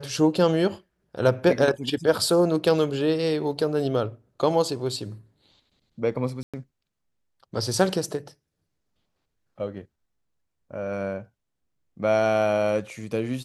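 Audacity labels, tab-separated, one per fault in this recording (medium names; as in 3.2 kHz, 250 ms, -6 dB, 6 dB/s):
6.430000	6.540000	dropout 106 ms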